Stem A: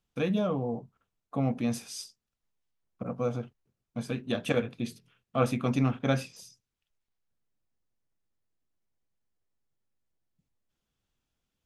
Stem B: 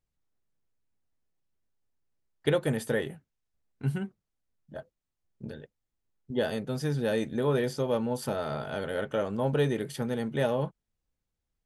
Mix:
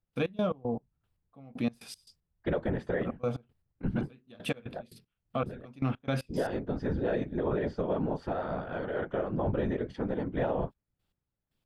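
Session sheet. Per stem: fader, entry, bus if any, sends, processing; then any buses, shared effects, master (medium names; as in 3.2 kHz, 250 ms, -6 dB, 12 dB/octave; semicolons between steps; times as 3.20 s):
+1.0 dB, 0.00 s, no send, de-esser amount 85%; peaking EQ 6.2 kHz -11 dB 0.44 oct; trance gate ".x.x.x..x.." 116 bpm -24 dB
-1.0 dB, 0.00 s, no send, low-pass 1.8 kHz 12 dB/octave; whisper effect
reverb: none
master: peaking EQ 4.9 kHz +3.5 dB 0.88 oct; peak limiter -20.5 dBFS, peak gain reduction 8 dB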